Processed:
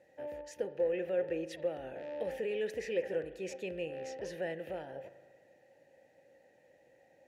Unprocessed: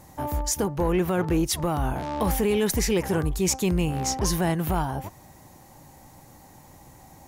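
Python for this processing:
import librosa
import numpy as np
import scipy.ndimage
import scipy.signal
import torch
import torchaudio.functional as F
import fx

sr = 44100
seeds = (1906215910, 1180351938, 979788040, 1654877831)

y = fx.vowel_filter(x, sr, vowel='e')
y = fx.rev_spring(y, sr, rt60_s=1.5, pass_ms=(37,), chirp_ms=40, drr_db=13.0)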